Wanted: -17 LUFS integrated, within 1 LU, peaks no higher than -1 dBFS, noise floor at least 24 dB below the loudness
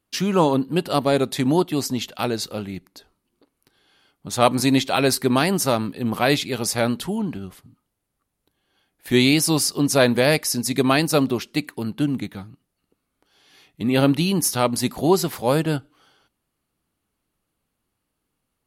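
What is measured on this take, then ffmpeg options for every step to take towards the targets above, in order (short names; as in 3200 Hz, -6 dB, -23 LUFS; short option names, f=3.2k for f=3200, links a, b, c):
loudness -21.0 LUFS; peak -1.0 dBFS; loudness target -17.0 LUFS
-> -af "volume=4dB,alimiter=limit=-1dB:level=0:latency=1"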